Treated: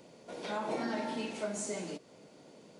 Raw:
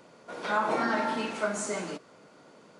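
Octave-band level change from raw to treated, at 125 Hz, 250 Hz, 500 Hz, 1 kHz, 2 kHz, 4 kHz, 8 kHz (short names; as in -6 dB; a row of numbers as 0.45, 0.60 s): -3.5, -4.0, -5.5, -10.5, -11.5, -4.5, -3.5 dB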